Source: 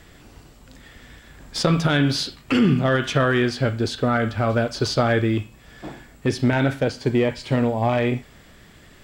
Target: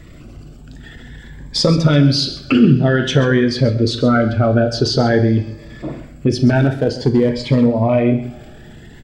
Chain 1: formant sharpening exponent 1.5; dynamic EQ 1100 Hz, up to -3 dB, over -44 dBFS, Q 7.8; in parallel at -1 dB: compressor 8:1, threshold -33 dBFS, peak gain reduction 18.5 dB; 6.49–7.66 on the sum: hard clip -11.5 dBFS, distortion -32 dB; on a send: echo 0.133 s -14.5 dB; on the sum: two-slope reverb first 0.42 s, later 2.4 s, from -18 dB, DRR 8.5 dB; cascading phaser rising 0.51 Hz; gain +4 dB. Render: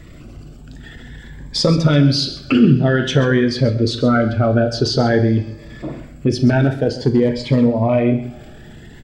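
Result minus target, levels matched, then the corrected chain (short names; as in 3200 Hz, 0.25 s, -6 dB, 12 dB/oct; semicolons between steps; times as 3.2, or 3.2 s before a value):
compressor: peak gain reduction +5.5 dB
formant sharpening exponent 1.5; dynamic EQ 1100 Hz, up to -3 dB, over -44 dBFS, Q 7.8; in parallel at -1 dB: compressor 8:1, threshold -26.5 dBFS, peak gain reduction 13 dB; 6.49–7.66 on the sum: hard clip -11.5 dBFS, distortion -28 dB; on a send: echo 0.133 s -14.5 dB; on the sum: two-slope reverb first 0.42 s, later 2.4 s, from -18 dB, DRR 8.5 dB; cascading phaser rising 0.51 Hz; gain +4 dB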